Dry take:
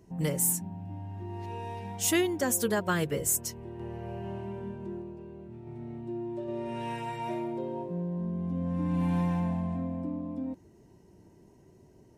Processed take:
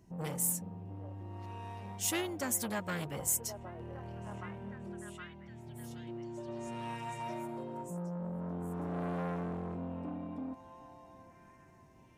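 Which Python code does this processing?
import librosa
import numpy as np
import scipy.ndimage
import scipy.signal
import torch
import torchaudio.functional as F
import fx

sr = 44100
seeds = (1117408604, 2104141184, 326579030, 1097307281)

p1 = fx.peak_eq(x, sr, hz=430.0, db=-8.5, octaves=0.6)
p2 = p1 + fx.echo_stepped(p1, sr, ms=766, hz=600.0, octaves=0.7, feedback_pct=70, wet_db=-8, dry=0)
p3 = fx.transformer_sat(p2, sr, knee_hz=1600.0)
y = p3 * librosa.db_to_amplitude(-3.0)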